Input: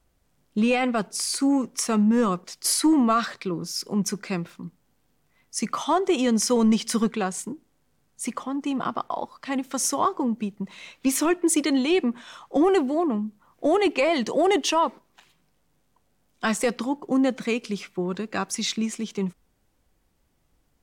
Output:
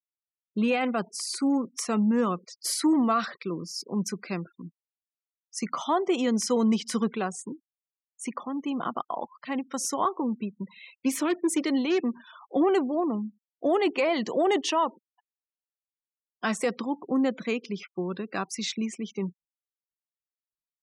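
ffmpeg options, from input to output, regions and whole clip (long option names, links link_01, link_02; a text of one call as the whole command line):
ffmpeg -i in.wav -filter_complex "[0:a]asettb=1/sr,asplit=3[link_01][link_02][link_03];[link_01]atrim=end=11.154[link_04];[link_02]atrim=start=11.15:end=12.41,asetpts=PTS-STARTPTS,afade=type=in:duration=0.004:curve=qsin,afade=type=out:start_time=1.256:duration=0.004:curve=qsin,highpass=frequency=96:width=0.5412,highpass=frequency=96:width=1.3066,equalizer=frequency=5700:width=0.86:gain=-3,aeval=exprs='0.178*(abs(mod(val(0)/0.178+3,4)-2)-1)':channel_layout=same[link_05];[link_03]atrim=start=12.406[link_06];[link_04][link_05]acrossfade=duration=0.004:curve1=hsin:curve2=qsin[link_07];[link_07][link_06]acrossfade=duration=0.004:curve1=qsin:curve2=hsin,afftfilt=real='re*gte(hypot(re,im),0.0112)':imag='im*gte(hypot(re,im),0.0112)':win_size=1024:overlap=0.75,highpass=140,highshelf=frequency=6600:gain=-5.5,volume=-3dB" out.wav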